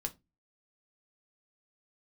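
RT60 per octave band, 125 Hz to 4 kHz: 0.40, 0.35, 0.25, 0.20, 0.20, 0.15 s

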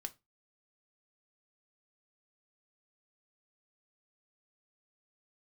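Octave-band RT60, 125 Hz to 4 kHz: 0.30, 0.25, 0.25, 0.20, 0.20, 0.20 s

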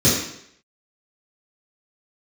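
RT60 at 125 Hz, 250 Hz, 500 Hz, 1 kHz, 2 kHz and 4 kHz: 0.65, 0.65, 0.70, 0.70, 0.70, 0.70 s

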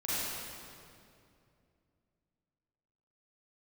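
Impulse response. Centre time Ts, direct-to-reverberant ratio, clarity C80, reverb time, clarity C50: 0.185 s, -11.0 dB, -4.0 dB, 2.5 s, -7.0 dB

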